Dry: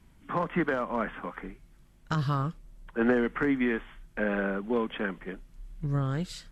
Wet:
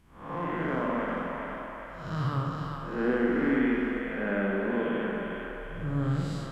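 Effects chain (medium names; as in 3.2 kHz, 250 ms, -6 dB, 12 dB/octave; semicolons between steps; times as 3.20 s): spectral blur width 231 ms; two-band feedback delay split 480 Hz, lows 119 ms, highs 402 ms, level -4 dB; spring tank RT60 1.4 s, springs 46 ms, chirp 40 ms, DRR 2.5 dB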